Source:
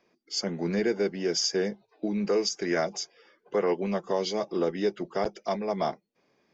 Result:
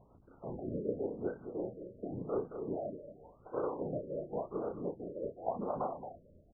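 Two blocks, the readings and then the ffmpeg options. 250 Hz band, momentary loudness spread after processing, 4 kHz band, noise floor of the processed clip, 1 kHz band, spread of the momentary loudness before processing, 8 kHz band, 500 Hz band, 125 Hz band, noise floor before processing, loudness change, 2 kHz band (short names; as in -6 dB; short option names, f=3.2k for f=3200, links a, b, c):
-10.5 dB, 10 LU, under -40 dB, -62 dBFS, -7.5 dB, 6 LU, n/a, -9.5 dB, -7.5 dB, -73 dBFS, -10.5 dB, under -20 dB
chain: -filter_complex "[0:a]acompressor=threshold=-43dB:ratio=3,aeval=exprs='val(0)+0.000708*(sin(2*PI*60*n/s)+sin(2*PI*2*60*n/s)/2+sin(2*PI*3*60*n/s)/3+sin(2*PI*4*60*n/s)/4+sin(2*PI*5*60*n/s)/5)':c=same,equalizer=f=900:t=o:w=1.9:g=7,afftfilt=real='hypot(re,im)*cos(2*PI*random(0))':imag='hypot(re,im)*sin(2*PI*random(1))':win_size=512:overlap=0.75,asplit=2[a][b];[b]adelay=33,volume=-3.5dB[c];[a][c]amix=inputs=2:normalize=0,tremolo=f=5.5:d=0.48,asplit=2[d][e];[e]aecho=0:1:221|442:0.355|0.0568[f];[d][f]amix=inputs=2:normalize=0,afftfilt=real='re*lt(b*sr/1024,620*pow(1600/620,0.5+0.5*sin(2*PI*0.91*pts/sr)))':imag='im*lt(b*sr/1024,620*pow(1600/620,0.5+0.5*sin(2*PI*0.91*pts/sr)))':win_size=1024:overlap=0.75,volume=7dB"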